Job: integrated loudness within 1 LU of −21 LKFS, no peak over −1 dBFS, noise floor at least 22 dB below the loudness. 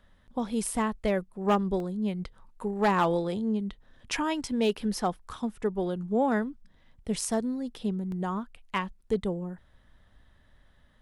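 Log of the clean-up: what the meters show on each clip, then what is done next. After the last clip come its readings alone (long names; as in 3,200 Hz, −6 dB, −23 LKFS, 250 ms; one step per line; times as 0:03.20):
share of clipped samples 0.2%; peaks flattened at −17.5 dBFS; number of dropouts 2; longest dropout 1.6 ms; integrated loudness −30.0 LKFS; sample peak −17.5 dBFS; target loudness −21.0 LKFS
→ clipped peaks rebuilt −17.5 dBFS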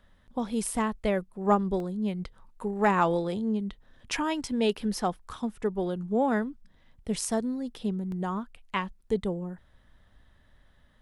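share of clipped samples 0.0%; number of dropouts 2; longest dropout 1.6 ms
→ repair the gap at 0:01.80/0:08.12, 1.6 ms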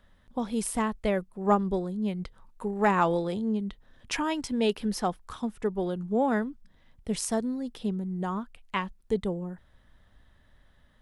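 number of dropouts 0; integrated loudness −30.0 LKFS; sample peak −11.5 dBFS; target loudness −21.0 LKFS
→ level +9 dB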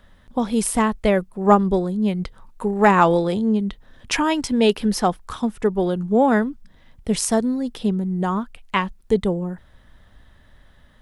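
integrated loudness −21.0 LKFS; sample peak −2.5 dBFS; background noise floor −52 dBFS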